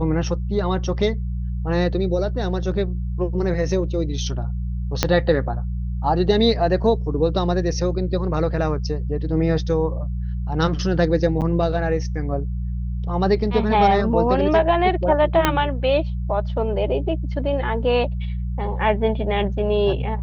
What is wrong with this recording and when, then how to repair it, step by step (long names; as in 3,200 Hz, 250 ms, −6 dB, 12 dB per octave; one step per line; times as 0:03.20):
mains hum 60 Hz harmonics 3 −25 dBFS
0:05.03: click −1 dBFS
0:11.41–0:11.42: drop-out 8.2 ms
0:15.45: click −2 dBFS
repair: click removal
hum removal 60 Hz, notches 3
repair the gap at 0:11.41, 8.2 ms